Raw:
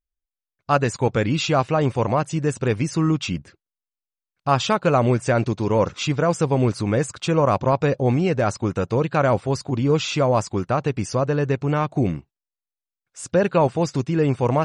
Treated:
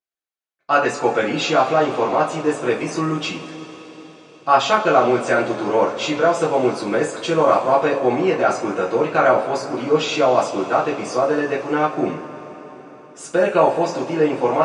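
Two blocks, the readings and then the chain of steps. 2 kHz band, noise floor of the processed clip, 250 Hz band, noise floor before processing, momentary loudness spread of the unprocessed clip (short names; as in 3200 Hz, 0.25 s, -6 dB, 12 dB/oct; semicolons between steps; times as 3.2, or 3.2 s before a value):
+5.5 dB, -47 dBFS, -0.5 dB, under -85 dBFS, 5 LU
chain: HPF 360 Hz 12 dB/oct; high shelf 4800 Hz -9.5 dB; two-slope reverb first 0.26 s, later 4.7 s, from -22 dB, DRR -6 dB; gain -1 dB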